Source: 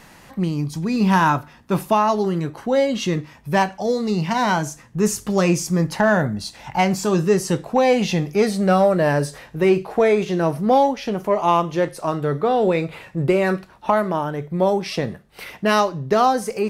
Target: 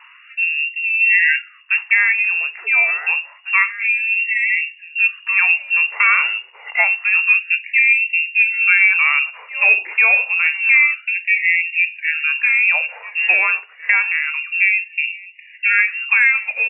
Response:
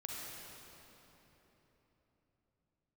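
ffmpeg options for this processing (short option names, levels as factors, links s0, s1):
-filter_complex "[0:a]lowpass=f=2500:t=q:w=0.5098,lowpass=f=2500:t=q:w=0.6013,lowpass=f=2500:t=q:w=0.9,lowpass=f=2500:t=q:w=2.563,afreqshift=-2900,asplit=2[s0][s1];[s1]adelay=1749,volume=0.447,highshelf=f=4000:g=-39.4[s2];[s0][s2]amix=inputs=2:normalize=0,afftfilt=real='re*gte(b*sr/1024,340*pow(1900/340,0.5+0.5*sin(2*PI*0.28*pts/sr)))':imag='im*gte(b*sr/1024,340*pow(1900/340,0.5+0.5*sin(2*PI*0.28*pts/sr)))':win_size=1024:overlap=0.75,volume=1.33"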